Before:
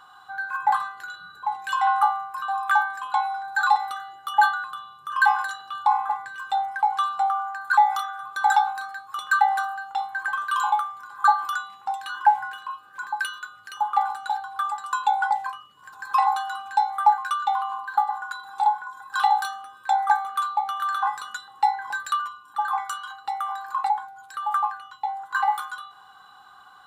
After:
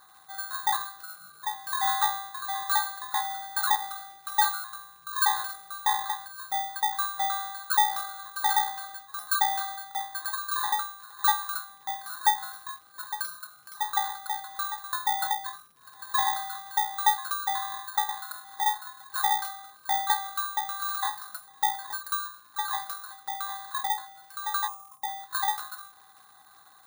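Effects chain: bit-reversed sample order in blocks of 16 samples; time-frequency box 24.68–25.02 s, 1.3–5 kHz -22 dB; crackle 94 per s -42 dBFS; trim -5.5 dB

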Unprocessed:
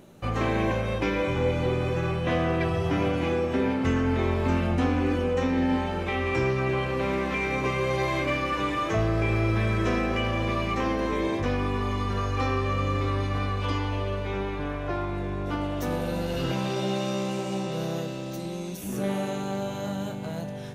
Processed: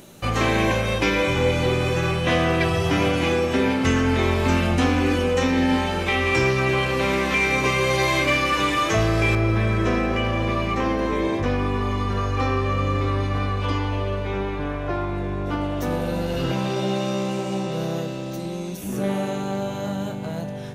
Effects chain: treble shelf 2.4 kHz +11 dB, from 9.35 s -2 dB; trim +4 dB

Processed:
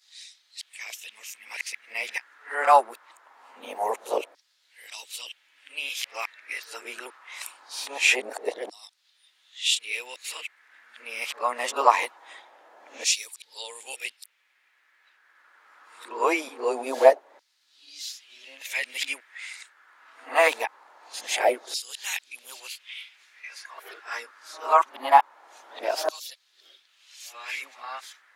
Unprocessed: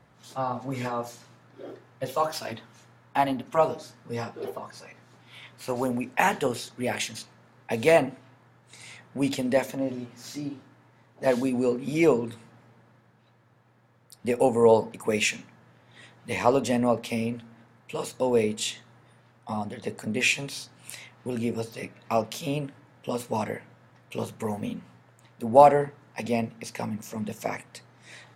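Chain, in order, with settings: reverse the whole clip; LFO high-pass saw down 0.23 Hz 590–4700 Hz; resonant low shelf 220 Hz -11.5 dB, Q 3; trim +2.5 dB

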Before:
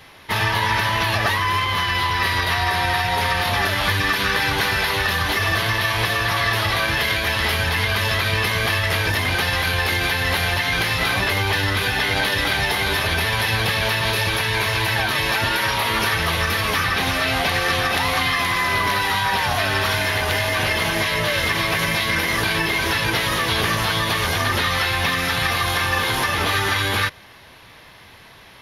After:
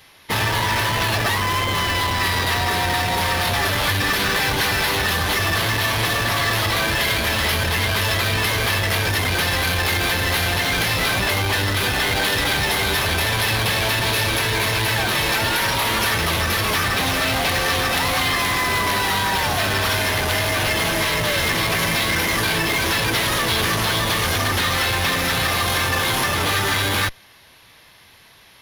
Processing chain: treble shelf 3.3 kHz +9.5 dB; in parallel at 0 dB: Schmitt trigger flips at -17.5 dBFS; on the sum: trim -7 dB

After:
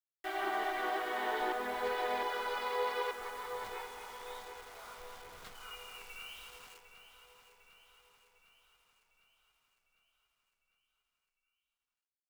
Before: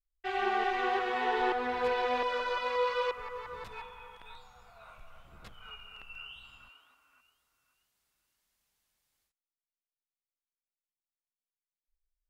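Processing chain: harmony voices -3 st -7 dB; peaking EQ 120 Hz -3.5 dB; in parallel at -0.5 dB: compression, threshold -44 dBFS, peak gain reduction 18 dB; on the sum: band-stop 2.6 kHz, Q 8.8; word length cut 8-bit, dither none; bass shelf 450 Hz -6.5 dB; on a send: feedback delay 753 ms, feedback 59%, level -11.5 dB; on the sum: trim -5 dB

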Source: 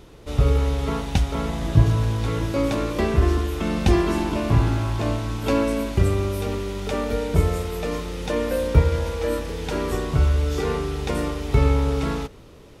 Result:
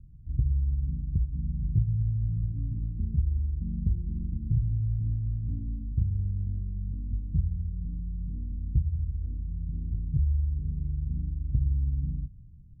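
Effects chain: inverse Chebyshev low-pass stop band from 530 Hz, stop band 60 dB; compression 2.5:1, threshold -25 dBFS, peak gain reduction 11 dB

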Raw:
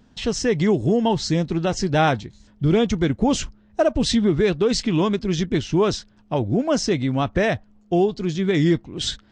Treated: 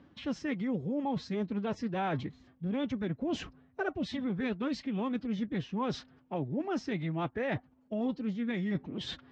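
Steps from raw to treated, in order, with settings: peak limiter -12 dBFS, peak gain reduction 3.5 dB; reverse; compression 10:1, threshold -29 dBFS, peak gain reduction 13.5 dB; reverse; formant-preserving pitch shift +3.5 st; band-pass 120–2600 Hz

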